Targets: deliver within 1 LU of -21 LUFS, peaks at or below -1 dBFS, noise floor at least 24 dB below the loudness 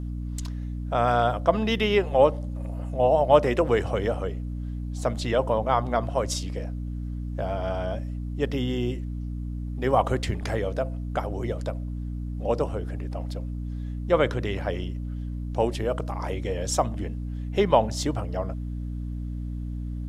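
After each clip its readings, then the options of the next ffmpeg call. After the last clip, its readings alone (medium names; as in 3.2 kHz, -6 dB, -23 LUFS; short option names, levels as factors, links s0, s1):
hum 60 Hz; highest harmonic 300 Hz; hum level -29 dBFS; loudness -27.0 LUFS; peak level -4.5 dBFS; loudness target -21.0 LUFS
-> -af "bandreject=f=60:t=h:w=6,bandreject=f=120:t=h:w=6,bandreject=f=180:t=h:w=6,bandreject=f=240:t=h:w=6,bandreject=f=300:t=h:w=6"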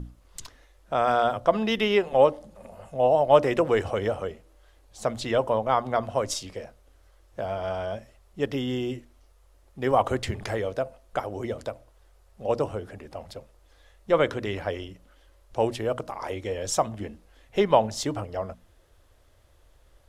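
hum not found; loudness -26.5 LUFS; peak level -5.0 dBFS; loudness target -21.0 LUFS
-> -af "volume=1.88,alimiter=limit=0.891:level=0:latency=1"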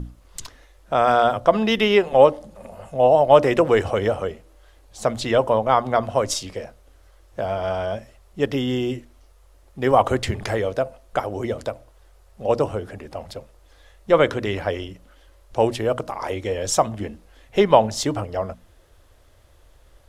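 loudness -21.0 LUFS; peak level -1.0 dBFS; noise floor -53 dBFS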